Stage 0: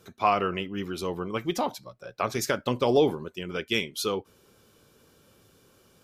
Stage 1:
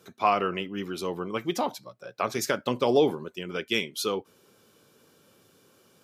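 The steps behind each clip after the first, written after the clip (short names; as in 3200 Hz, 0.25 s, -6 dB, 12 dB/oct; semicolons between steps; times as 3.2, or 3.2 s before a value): HPF 140 Hz 12 dB/oct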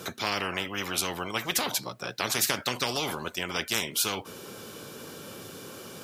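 spectral compressor 4:1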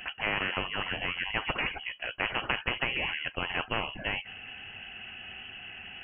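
inverted band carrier 3100 Hz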